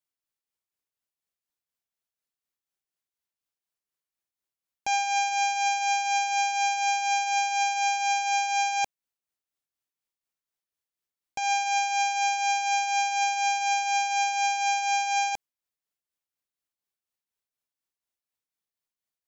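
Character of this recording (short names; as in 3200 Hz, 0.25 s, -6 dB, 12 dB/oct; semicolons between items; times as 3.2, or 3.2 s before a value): tremolo triangle 4.1 Hz, depth 55%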